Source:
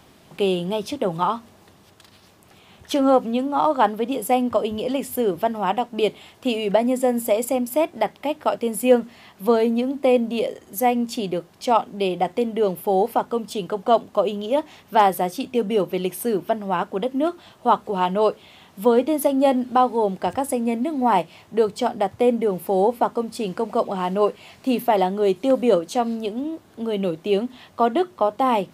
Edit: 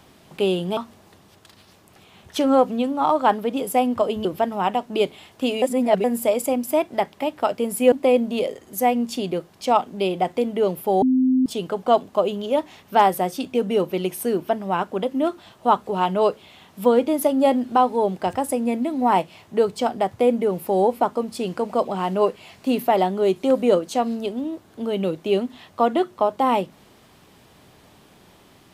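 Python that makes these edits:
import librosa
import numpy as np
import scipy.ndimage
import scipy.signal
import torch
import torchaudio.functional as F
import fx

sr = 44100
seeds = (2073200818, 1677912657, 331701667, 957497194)

y = fx.edit(x, sr, fx.cut(start_s=0.77, length_s=0.55),
    fx.cut(start_s=4.8, length_s=0.48),
    fx.reverse_span(start_s=6.65, length_s=0.42),
    fx.cut(start_s=8.95, length_s=0.97),
    fx.bleep(start_s=13.02, length_s=0.44, hz=258.0, db=-14.5), tone=tone)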